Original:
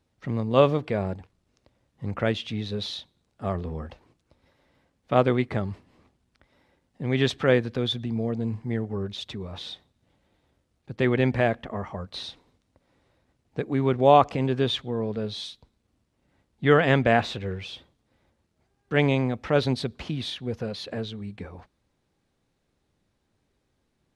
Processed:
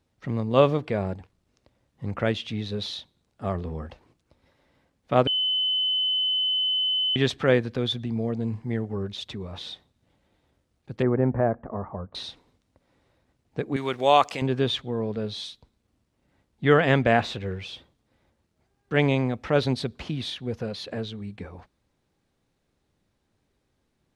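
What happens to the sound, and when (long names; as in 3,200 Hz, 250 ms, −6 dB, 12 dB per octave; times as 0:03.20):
0:05.27–0:07.16: beep over 3,030 Hz −21.5 dBFS
0:11.02–0:12.15: low-pass filter 1,300 Hz 24 dB per octave
0:13.76–0:14.42: spectral tilt +4 dB per octave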